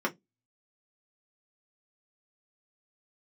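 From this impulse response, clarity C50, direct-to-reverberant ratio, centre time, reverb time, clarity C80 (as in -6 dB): 23.0 dB, -2.5 dB, 10 ms, 0.15 s, 35.0 dB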